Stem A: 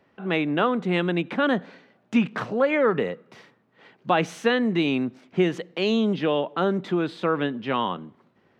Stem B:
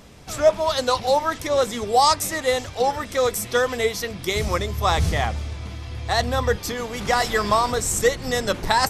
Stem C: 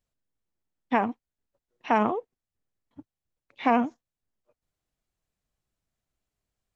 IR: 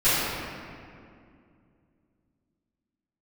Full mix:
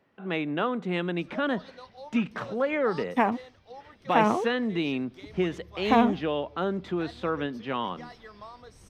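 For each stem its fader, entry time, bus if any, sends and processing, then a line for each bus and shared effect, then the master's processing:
−5.5 dB, 0.00 s, no send, no processing
−20.0 dB, 0.90 s, no send, Savitzky-Golay smoothing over 15 samples; automatic gain control gain up to 10 dB; automatic ducking −11 dB, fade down 1.70 s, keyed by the first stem
+0.5 dB, 2.25 s, no send, running median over 5 samples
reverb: not used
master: no processing

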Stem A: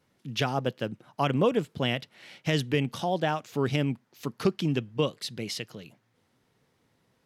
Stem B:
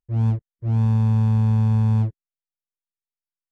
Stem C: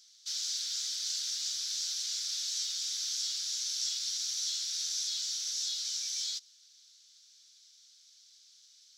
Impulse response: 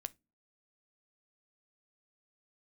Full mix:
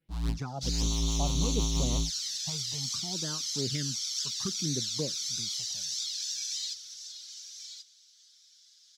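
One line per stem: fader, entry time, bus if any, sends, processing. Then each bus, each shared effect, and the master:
−7.5 dB, 0.00 s, send −14 dB, no echo send, all-pass phaser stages 4, 0.66 Hz, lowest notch 270–3,000 Hz
−10.0 dB, 0.00 s, send −17.5 dB, no echo send, sub-harmonics by changed cycles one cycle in 2, inverted; octave-band graphic EQ 125/250/500/1,000/2,000/4,000/8,000 Hz +4/−3/−6/+9/−6/+12/+3 dB; rotating-speaker cabinet horn 6 Hz
−0.5 dB, 0.35 s, send −7.5 dB, echo send −7.5 dB, comb filter 6.1 ms, depth 56%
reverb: on, pre-delay 8 ms
echo: single-tap delay 1,081 ms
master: flanger swept by the level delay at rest 6.1 ms, full sweep at −23.5 dBFS

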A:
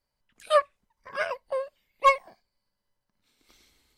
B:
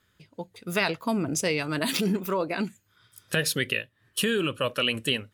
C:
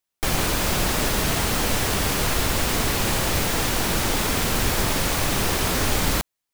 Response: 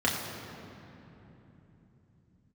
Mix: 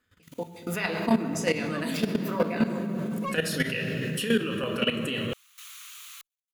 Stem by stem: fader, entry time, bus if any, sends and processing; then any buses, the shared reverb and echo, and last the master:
−5.0 dB, 1.20 s, no send, no processing
0.0 dB, 0.00 s, send −5.5 dB, no processing
−4.0 dB, 0.00 s, no send, lower of the sound and its delayed copy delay 0.3 ms; elliptic high-pass filter 1,200 Hz, stop band 40 dB; parametric band 3,900 Hz −2.5 dB 1.2 octaves; automatic ducking −19 dB, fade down 0.30 s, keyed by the second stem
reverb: on, RT60 3.4 s, pre-delay 3 ms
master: output level in coarse steps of 15 dB; brickwall limiter −13 dBFS, peak gain reduction 9 dB

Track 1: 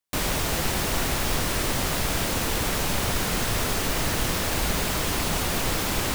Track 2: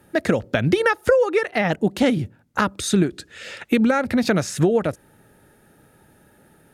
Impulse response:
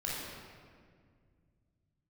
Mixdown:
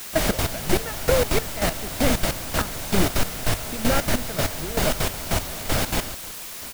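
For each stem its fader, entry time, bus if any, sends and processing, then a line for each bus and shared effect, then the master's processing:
−1.0 dB, 0.00 s, send −6 dB, echo send −16.5 dB, no processing
−6.0 dB, 0.00 s, no send, no echo send, no processing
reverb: on, RT60 2.0 s, pre-delay 20 ms
echo: repeating echo 551 ms, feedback 36%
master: parametric band 640 Hz +6 dB 0.23 octaves; gate pattern "..xx.x...x.." 195 BPM −12 dB; bit-depth reduction 6 bits, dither triangular

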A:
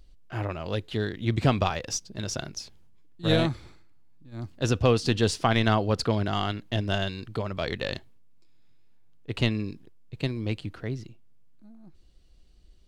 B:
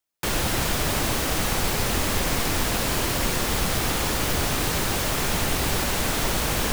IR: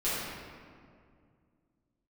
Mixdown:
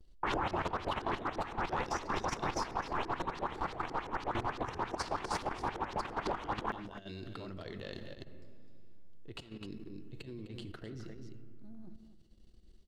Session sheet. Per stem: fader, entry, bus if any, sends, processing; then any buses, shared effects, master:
−10.5 dB, 0.00 s, send −16.5 dB, echo send −7 dB, notch filter 2,400 Hz, Q 13; compressor whose output falls as the input rises −36 dBFS, ratio −1
−6.0 dB, 0.00 s, no send, echo send −23.5 dB, auto-filter notch square 9.4 Hz 580–4,700 Hz; parametric band 930 Hz +13.5 dB 1.4 octaves; auto-filter low-pass saw up 5.9 Hz 390–5,400 Hz; automatic ducking −10 dB, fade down 0.55 s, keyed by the first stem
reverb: on, RT60 2.2 s, pre-delay 5 ms
echo: single-tap delay 257 ms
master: noise gate with hold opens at −52 dBFS; parametric band 350 Hz +6 dB 0.75 octaves; output level in coarse steps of 11 dB

